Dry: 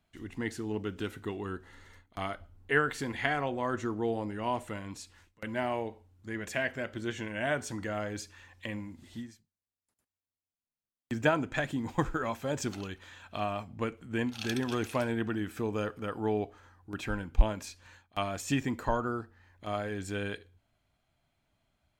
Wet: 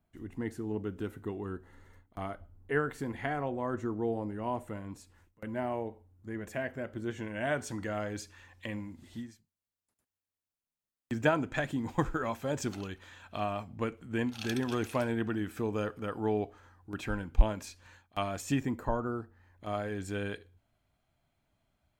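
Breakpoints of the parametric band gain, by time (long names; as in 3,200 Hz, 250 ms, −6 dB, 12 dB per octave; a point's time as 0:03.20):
parametric band 4,000 Hz 2.7 octaves
0:06.94 −12.5 dB
0:07.59 −2.5 dB
0:18.41 −2.5 dB
0:18.92 −13.5 dB
0:19.80 −3.5 dB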